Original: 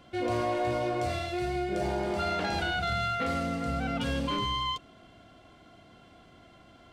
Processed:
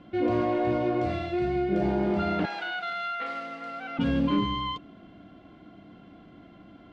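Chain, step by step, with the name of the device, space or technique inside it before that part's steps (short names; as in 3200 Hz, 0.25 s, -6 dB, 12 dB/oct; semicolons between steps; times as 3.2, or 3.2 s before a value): inside a cardboard box (LPF 3100 Hz 12 dB/oct; small resonant body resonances 200/290 Hz, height 11 dB, ringing for 50 ms); 2.45–3.99 HPF 850 Hz 12 dB/oct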